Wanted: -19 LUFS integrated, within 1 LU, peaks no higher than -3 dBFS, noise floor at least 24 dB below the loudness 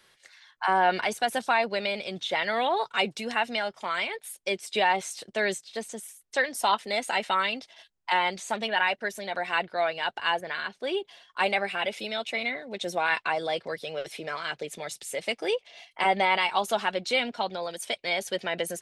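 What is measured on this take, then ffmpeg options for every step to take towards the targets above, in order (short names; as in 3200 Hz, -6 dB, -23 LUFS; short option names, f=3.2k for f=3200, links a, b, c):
loudness -28.0 LUFS; peak -11.0 dBFS; loudness target -19.0 LUFS
-> -af "volume=9dB,alimiter=limit=-3dB:level=0:latency=1"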